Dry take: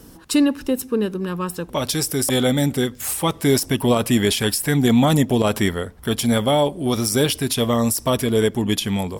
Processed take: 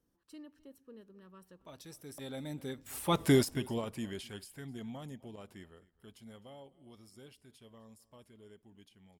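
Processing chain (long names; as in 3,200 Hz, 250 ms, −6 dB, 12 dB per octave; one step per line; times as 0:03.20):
source passing by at 0:03.24, 16 m/s, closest 1.6 metres
high-shelf EQ 5,500 Hz −5.5 dB
single-tap delay 258 ms −22 dB
level −4.5 dB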